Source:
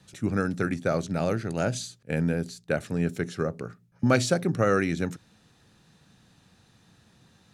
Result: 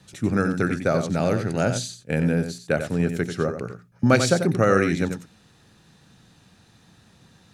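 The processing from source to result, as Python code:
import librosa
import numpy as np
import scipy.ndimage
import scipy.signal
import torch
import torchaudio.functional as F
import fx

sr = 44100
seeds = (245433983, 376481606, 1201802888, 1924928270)

y = x + 10.0 ** (-8.5 / 20.0) * np.pad(x, (int(91 * sr / 1000.0), 0))[:len(x)]
y = y * librosa.db_to_amplitude(4.0)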